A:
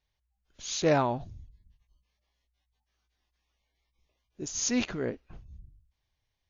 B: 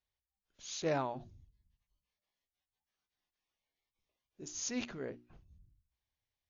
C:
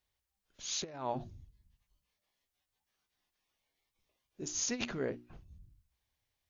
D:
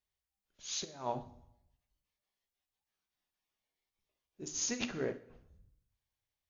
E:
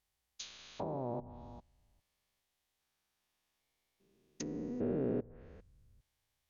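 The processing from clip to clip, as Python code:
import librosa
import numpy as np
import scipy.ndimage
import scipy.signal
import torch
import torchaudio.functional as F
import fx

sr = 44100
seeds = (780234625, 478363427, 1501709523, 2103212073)

y1 = fx.low_shelf(x, sr, hz=62.0, db=-6.5)
y1 = fx.hum_notches(y1, sr, base_hz=60, count=6)
y1 = F.gain(torch.from_numpy(y1), -9.0).numpy()
y2 = fx.over_compress(y1, sr, threshold_db=-39.0, ratio=-0.5)
y2 = F.gain(torch.from_numpy(y2), 3.5).numpy()
y3 = fx.rev_plate(y2, sr, seeds[0], rt60_s=0.8, hf_ratio=0.85, predelay_ms=0, drr_db=7.0)
y3 = fx.upward_expand(y3, sr, threshold_db=-47.0, expansion=1.5)
y4 = fx.spec_steps(y3, sr, hold_ms=400)
y4 = fx.env_lowpass_down(y4, sr, base_hz=590.0, full_db=-42.0)
y4 = F.gain(torch.from_numpy(y4), 8.5).numpy()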